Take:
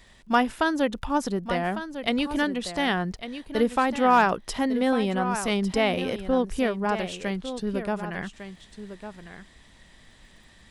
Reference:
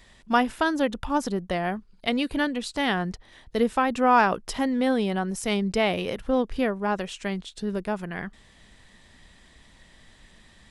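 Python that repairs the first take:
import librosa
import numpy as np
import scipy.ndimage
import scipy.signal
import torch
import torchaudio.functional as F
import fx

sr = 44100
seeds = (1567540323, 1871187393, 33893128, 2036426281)

y = fx.fix_declip(x, sr, threshold_db=-10.5)
y = fx.fix_declick_ar(y, sr, threshold=6.5)
y = fx.fix_echo_inverse(y, sr, delay_ms=1152, level_db=-11.0)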